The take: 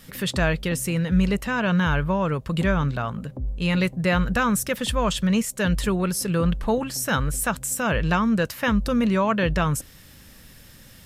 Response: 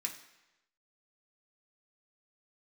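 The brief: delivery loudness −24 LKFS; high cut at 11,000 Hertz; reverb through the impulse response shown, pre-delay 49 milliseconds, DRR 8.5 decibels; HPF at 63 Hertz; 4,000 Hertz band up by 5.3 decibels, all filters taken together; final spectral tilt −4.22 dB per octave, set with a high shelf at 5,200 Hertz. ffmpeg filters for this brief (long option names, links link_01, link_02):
-filter_complex "[0:a]highpass=63,lowpass=11000,equalizer=frequency=4000:width_type=o:gain=5.5,highshelf=frequency=5200:gain=4,asplit=2[link_01][link_02];[1:a]atrim=start_sample=2205,adelay=49[link_03];[link_02][link_03]afir=irnorm=-1:irlink=0,volume=-8.5dB[link_04];[link_01][link_04]amix=inputs=2:normalize=0,volume=-2dB"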